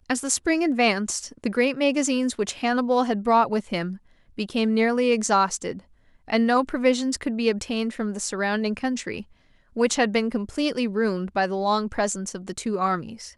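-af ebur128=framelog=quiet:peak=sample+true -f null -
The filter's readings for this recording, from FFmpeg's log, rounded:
Integrated loudness:
  I:         -23.8 LUFS
  Threshold: -34.2 LUFS
Loudness range:
  LRA:         3.0 LU
  Threshold: -44.2 LUFS
  LRA low:   -25.9 LUFS
  LRA high:  -22.9 LUFS
Sample peak:
  Peak:       -6.5 dBFS
True peak:
  Peak:       -5.7 dBFS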